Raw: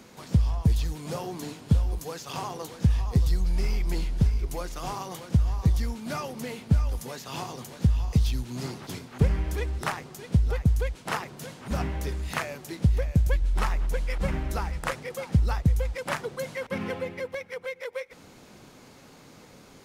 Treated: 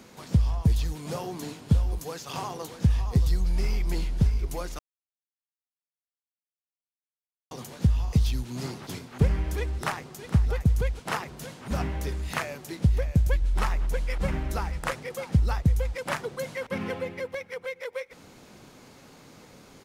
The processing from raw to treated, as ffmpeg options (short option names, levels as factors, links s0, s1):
-filter_complex "[0:a]asplit=2[s0][s1];[s1]afade=t=in:st=9.78:d=0.01,afade=t=out:st=10.53:d=0.01,aecho=0:1:460|920:0.211349|0.0317023[s2];[s0][s2]amix=inputs=2:normalize=0,asplit=3[s3][s4][s5];[s3]atrim=end=4.79,asetpts=PTS-STARTPTS,afade=t=out:st=4.786:d=0.004:c=hsin[s6];[s4]atrim=start=4.79:end=7.51,asetpts=PTS-STARTPTS,volume=0[s7];[s5]atrim=start=7.51,asetpts=PTS-STARTPTS,afade=t=in:d=0.004:c=hsin[s8];[s6][s7][s8]concat=n=3:v=0:a=1"